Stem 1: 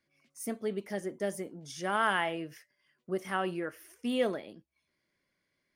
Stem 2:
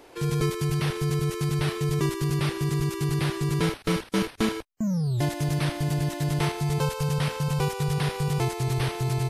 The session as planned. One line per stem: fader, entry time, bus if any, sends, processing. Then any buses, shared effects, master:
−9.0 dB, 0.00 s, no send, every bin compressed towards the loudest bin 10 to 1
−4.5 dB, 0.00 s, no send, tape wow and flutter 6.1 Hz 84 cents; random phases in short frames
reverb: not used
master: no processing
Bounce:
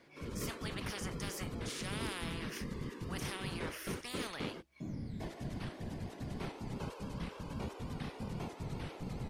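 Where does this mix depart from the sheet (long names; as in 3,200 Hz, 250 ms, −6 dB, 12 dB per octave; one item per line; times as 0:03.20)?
stem 2 −4.5 dB → −16.0 dB
master: extra high-shelf EQ 7,700 Hz −11.5 dB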